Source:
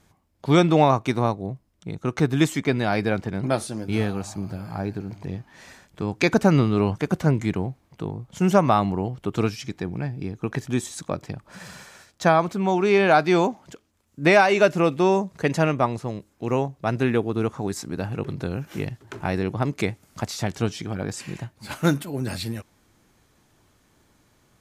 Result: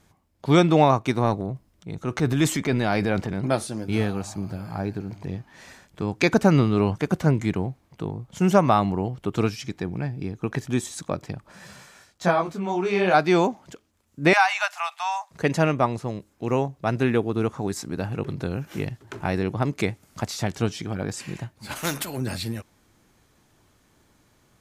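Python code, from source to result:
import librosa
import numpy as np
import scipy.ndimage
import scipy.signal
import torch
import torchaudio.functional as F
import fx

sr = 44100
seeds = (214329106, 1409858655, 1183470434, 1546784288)

y = fx.transient(x, sr, attack_db=-4, sustain_db=6, at=(1.23, 3.38))
y = fx.detune_double(y, sr, cents=fx.line((11.51, 17.0), (13.13, 37.0)), at=(11.51, 13.13), fade=0.02)
y = fx.steep_highpass(y, sr, hz=720.0, slope=72, at=(14.33, 15.31))
y = fx.spectral_comp(y, sr, ratio=2.0, at=(21.75, 22.16), fade=0.02)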